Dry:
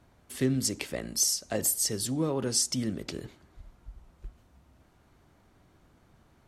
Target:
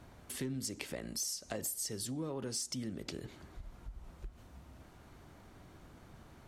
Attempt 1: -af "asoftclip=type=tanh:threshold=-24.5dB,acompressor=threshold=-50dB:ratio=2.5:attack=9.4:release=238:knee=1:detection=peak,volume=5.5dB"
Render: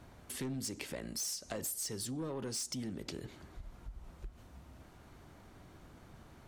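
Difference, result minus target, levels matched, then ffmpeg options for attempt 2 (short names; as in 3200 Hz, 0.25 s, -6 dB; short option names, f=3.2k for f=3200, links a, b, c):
soft clip: distortion +13 dB
-af "asoftclip=type=tanh:threshold=-15dB,acompressor=threshold=-50dB:ratio=2.5:attack=9.4:release=238:knee=1:detection=peak,volume=5.5dB"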